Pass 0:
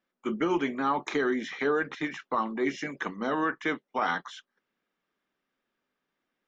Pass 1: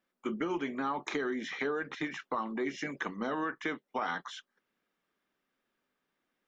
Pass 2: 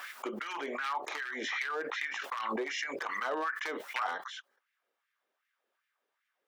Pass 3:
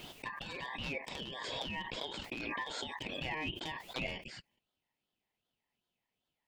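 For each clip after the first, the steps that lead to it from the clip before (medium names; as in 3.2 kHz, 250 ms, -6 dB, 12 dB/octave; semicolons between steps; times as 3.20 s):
compression 3:1, threshold -32 dBFS, peak gain reduction 7.5 dB
wavefolder -26.5 dBFS; LFO high-pass sine 2.6 Hz 450–2000 Hz; swell ahead of each attack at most 21 dB/s; trim -3 dB
ring modulator 1.4 kHz; trim -2 dB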